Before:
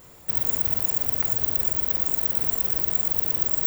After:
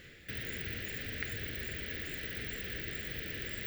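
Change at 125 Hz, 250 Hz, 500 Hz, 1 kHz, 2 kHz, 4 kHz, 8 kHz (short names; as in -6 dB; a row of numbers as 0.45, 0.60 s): -5.0, -5.0, -7.0, -15.0, +5.0, +0.5, -14.5 dB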